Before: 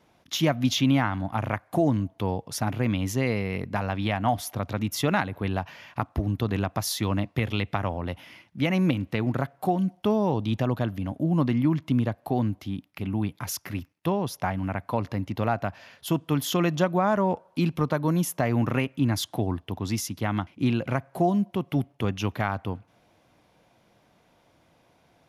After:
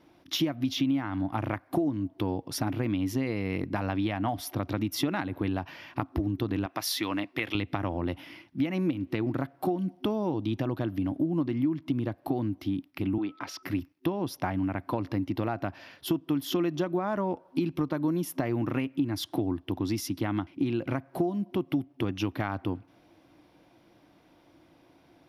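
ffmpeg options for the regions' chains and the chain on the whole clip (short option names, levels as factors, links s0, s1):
-filter_complex "[0:a]asettb=1/sr,asplit=3[s0][s1][s2];[s0]atrim=end=6.664[s3];[s1]atrim=start=6.66:end=7.55,asetpts=PTS-STARTPTS,afade=t=in:d=0.004:c=qsin,afade=t=out:st=0.886:d=0.004:c=qsin,highpass=f=680:p=1,equalizer=f=2200:t=o:w=1.3:g=4.5[s4];[s2]atrim=start=7.546[s5];[s3][s4]acrossfade=d=0.004:c1=hsin:c2=qsin[s6];[s6][s5]acrossfade=d=0.004:c1=qsin:c2=hsin,asettb=1/sr,asplit=3[s7][s8][s9];[s7]atrim=end=13.184[s10];[s8]atrim=start=13.18:end=13.63,asetpts=PTS-STARTPTS,afade=t=in:d=0.004:c=qsin,afade=t=out:st=0.446:d=0.004:c=qsin,acrossover=split=260 5400:gain=0.1 1 0.0794[s11][s12][s13];[s11][s12][s13]amix=inputs=3:normalize=0,aeval=exprs='val(0)+0.00178*sin(2*PI*1300*n/s)':c=same[s14];[s9]atrim=start=13.626[s15];[s10][s14]acrossfade=d=0.004:c1=hsin:c2=qsin[s16];[s16][s15]acrossfade=d=0.004:c1=qsin:c2=hsin,superequalizer=6b=3.16:15b=0.447:16b=0.708,acompressor=threshold=0.0562:ratio=6"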